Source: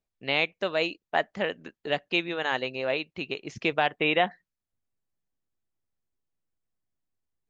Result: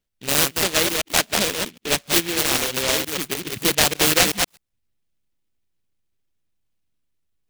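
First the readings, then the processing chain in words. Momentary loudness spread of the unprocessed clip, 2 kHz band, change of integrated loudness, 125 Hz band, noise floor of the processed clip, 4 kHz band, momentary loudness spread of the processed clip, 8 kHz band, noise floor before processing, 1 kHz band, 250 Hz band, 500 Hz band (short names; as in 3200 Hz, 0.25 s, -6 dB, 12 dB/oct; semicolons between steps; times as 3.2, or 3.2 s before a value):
8 LU, +4.5 dB, +8.5 dB, +9.5 dB, -75 dBFS, +12.0 dB, 9 LU, n/a, under -85 dBFS, +3.0 dB, +6.5 dB, +3.0 dB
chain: reverse delay 0.127 s, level -3.5 dB; noise-modulated delay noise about 2700 Hz, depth 0.33 ms; gain +6 dB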